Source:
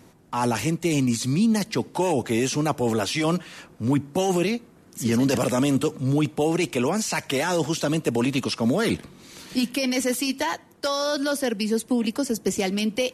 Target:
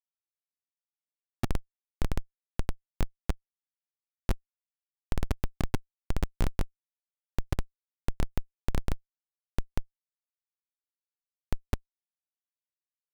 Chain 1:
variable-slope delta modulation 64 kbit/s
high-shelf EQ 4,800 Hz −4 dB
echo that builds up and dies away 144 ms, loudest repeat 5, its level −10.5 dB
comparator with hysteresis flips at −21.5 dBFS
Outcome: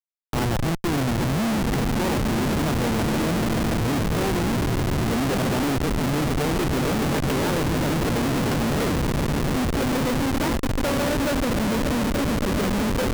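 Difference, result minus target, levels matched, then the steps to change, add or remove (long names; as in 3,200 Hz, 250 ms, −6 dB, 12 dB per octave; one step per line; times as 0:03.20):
comparator with hysteresis: distortion −36 dB
change: comparator with hysteresis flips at −11.5 dBFS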